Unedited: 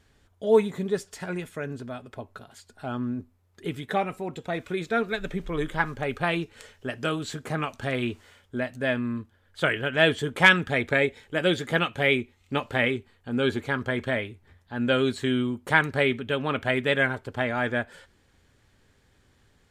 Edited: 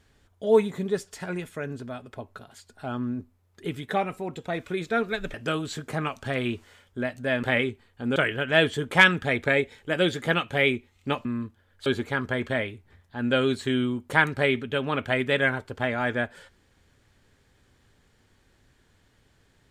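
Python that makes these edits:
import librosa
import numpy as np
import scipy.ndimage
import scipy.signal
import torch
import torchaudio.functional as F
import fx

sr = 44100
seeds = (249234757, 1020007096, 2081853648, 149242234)

y = fx.edit(x, sr, fx.cut(start_s=5.34, length_s=1.57),
    fx.swap(start_s=9.0, length_s=0.61, other_s=12.7, other_length_s=0.73), tone=tone)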